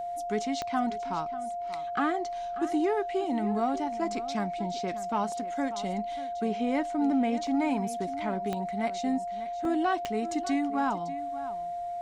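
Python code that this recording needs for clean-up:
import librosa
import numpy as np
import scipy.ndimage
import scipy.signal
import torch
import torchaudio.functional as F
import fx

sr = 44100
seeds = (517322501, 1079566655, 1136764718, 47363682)

y = fx.fix_declick_ar(x, sr, threshold=10.0)
y = fx.notch(y, sr, hz=700.0, q=30.0)
y = fx.fix_interpolate(y, sr, at_s=(5.32, 7.47, 9.65), length_ms=1.6)
y = fx.fix_echo_inverse(y, sr, delay_ms=589, level_db=-14.5)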